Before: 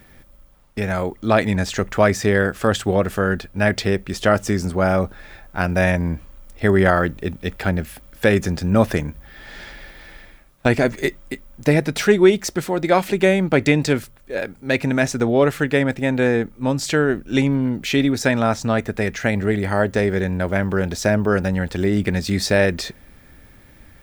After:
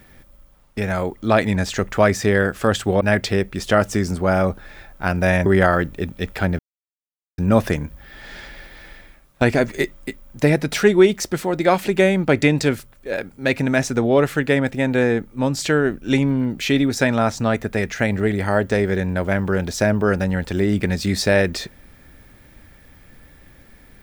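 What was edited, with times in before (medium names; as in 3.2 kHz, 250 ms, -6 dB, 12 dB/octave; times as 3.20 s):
3.01–3.55 s: delete
6.00–6.70 s: delete
7.83–8.62 s: mute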